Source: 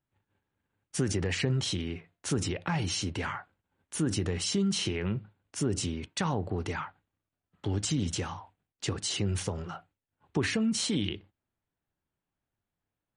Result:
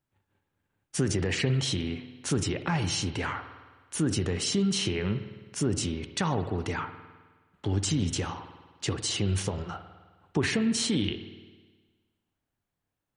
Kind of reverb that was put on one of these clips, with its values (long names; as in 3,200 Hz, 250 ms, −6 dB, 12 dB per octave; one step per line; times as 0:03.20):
spring reverb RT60 1.4 s, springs 52 ms, chirp 25 ms, DRR 10 dB
level +2 dB